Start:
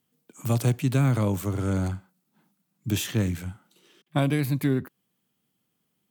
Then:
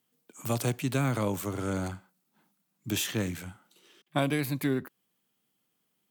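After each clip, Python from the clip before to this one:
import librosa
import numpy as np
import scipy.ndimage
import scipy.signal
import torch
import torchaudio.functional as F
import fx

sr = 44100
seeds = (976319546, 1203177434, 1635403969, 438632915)

y = fx.low_shelf(x, sr, hz=190.0, db=-12.0)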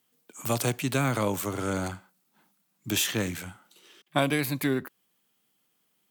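y = fx.low_shelf(x, sr, hz=390.0, db=-5.5)
y = y * librosa.db_to_amplitude(5.0)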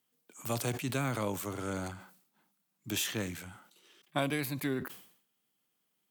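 y = fx.sustainer(x, sr, db_per_s=94.0)
y = y * librosa.db_to_amplitude(-7.0)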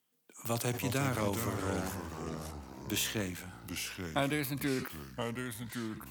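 y = fx.echo_pitch(x, sr, ms=238, semitones=-3, count=3, db_per_echo=-6.0)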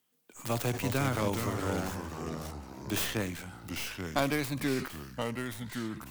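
y = fx.tracing_dist(x, sr, depth_ms=0.37)
y = y * librosa.db_to_amplitude(2.5)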